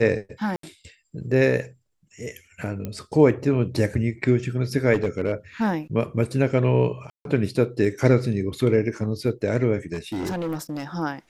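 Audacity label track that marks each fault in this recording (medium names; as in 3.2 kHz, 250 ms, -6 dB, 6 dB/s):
0.560000	0.630000	dropout 73 ms
2.850000	2.850000	pop -18 dBFS
4.930000	5.330000	clipped -16.5 dBFS
7.100000	7.250000	dropout 152 ms
9.930000	10.840000	clipped -24 dBFS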